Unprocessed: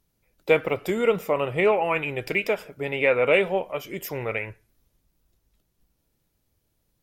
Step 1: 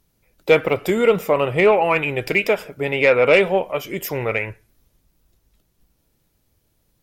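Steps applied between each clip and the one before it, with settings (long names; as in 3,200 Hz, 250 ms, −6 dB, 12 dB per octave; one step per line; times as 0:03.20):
soft clipping −9 dBFS, distortion −23 dB
level +6.5 dB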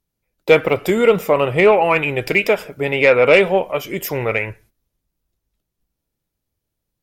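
noise gate −50 dBFS, range −15 dB
level +2.5 dB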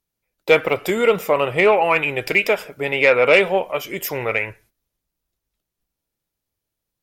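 low-shelf EQ 400 Hz −7.5 dB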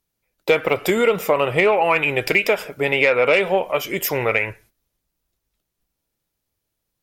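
downward compressor 4 to 1, threshold −17 dBFS, peak gain reduction 8 dB
level +3.5 dB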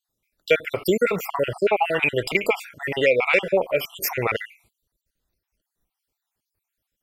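time-frequency cells dropped at random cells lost 54%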